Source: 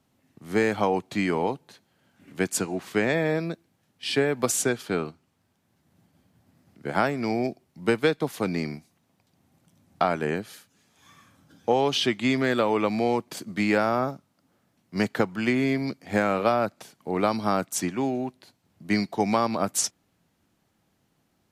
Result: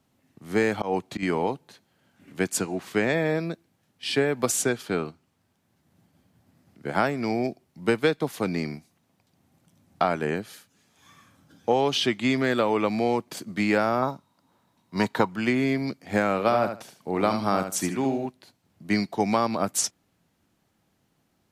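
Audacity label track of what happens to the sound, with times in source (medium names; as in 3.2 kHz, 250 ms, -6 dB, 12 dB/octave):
0.610000	1.230000	slow attack 114 ms
14.020000	15.280000	small resonant body resonances 960/3800 Hz, height 14 dB, ringing for 25 ms
16.390000	18.260000	feedback delay 74 ms, feedback 19%, level -8 dB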